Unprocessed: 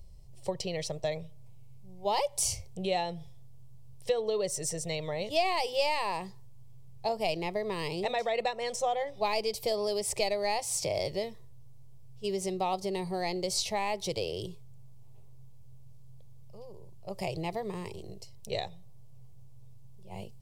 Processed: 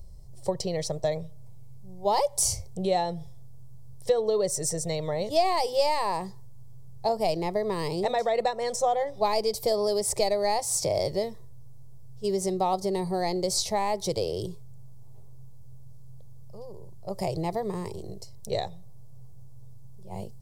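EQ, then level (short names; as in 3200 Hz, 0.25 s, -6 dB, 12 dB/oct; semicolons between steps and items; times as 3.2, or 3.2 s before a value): bell 2700 Hz -13 dB 0.74 oct; +5.5 dB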